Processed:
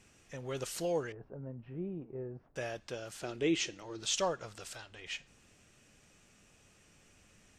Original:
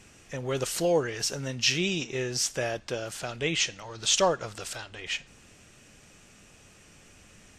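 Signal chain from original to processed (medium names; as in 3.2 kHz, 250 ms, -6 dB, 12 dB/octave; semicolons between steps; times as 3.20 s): 1.12–2.56 s: Bessel low-pass 710 Hz, order 4; 3.22–4.03 s: peaking EQ 340 Hz +14.5 dB 0.73 oct; trim -9 dB; Vorbis 128 kbps 44.1 kHz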